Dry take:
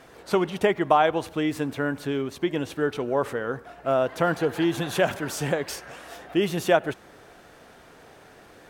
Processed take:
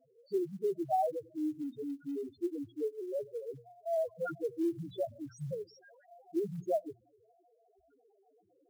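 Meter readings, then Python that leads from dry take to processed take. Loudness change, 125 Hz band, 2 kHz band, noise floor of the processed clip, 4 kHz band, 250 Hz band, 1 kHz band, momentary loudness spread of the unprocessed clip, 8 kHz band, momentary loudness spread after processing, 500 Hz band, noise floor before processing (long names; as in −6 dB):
−11.5 dB, −14.0 dB, −27.0 dB, −71 dBFS, below −25 dB, −10.5 dB, −12.0 dB, 11 LU, below −20 dB, 10 LU, −10.5 dB, −51 dBFS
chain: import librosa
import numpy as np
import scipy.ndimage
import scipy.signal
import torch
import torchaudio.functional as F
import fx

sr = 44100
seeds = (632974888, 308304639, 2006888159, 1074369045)

y = fx.spec_topn(x, sr, count=1)
y = fx.quant_float(y, sr, bits=4)
y = fx.hum_notches(y, sr, base_hz=60, count=4)
y = y * librosa.db_to_amplitude(-3.5)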